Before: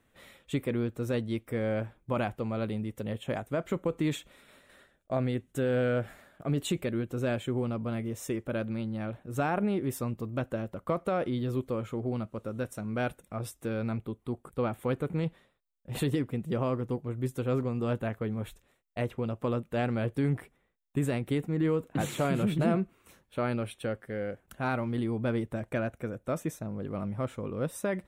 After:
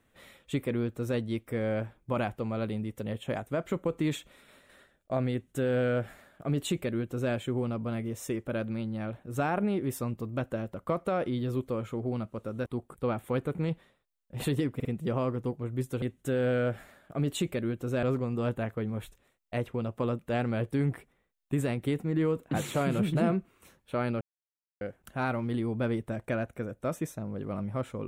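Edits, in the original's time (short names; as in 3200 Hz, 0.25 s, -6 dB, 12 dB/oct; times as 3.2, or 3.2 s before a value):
5.32–7.33 copy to 17.47
12.66–14.21 cut
16.3 stutter 0.05 s, 3 plays
23.65–24.25 mute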